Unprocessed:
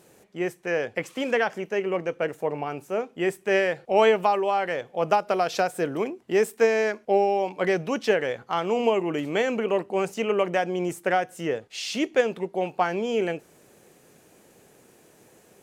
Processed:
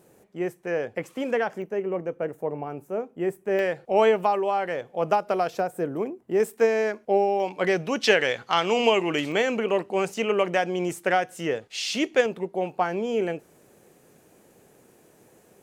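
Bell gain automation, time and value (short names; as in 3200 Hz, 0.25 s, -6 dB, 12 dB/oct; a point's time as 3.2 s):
bell 4000 Hz 2.8 oct
-7.5 dB
from 1.62 s -15 dB
from 3.59 s -4.5 dB
from 5.5 s -13.5 dB
from 6.4 s -4.5 dB
from 7.4 s +2 dB
from 8.03 s +11 dB
from 9.32 s +3 dB
from 12.26 s -4.5 dB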